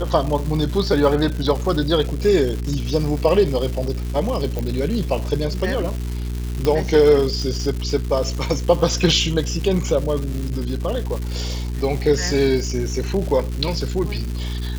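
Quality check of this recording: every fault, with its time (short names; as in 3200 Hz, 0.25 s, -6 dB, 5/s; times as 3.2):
crackle 350/s -26 dBFS
hum 60 Hz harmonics 7 -25 dBFS
4.59 pop -12 dBFS
6.65 pop -8 dBFS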